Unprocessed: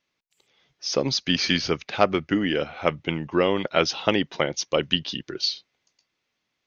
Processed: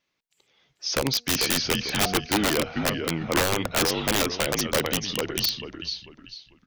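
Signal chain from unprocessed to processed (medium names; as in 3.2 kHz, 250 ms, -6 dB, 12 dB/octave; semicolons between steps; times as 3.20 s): de-hum 238.1 Hz, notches 3; frequency-shifting echo 444 ms, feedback 31%, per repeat -50 Hz, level -6.5 dB; integer overflow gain 15 dB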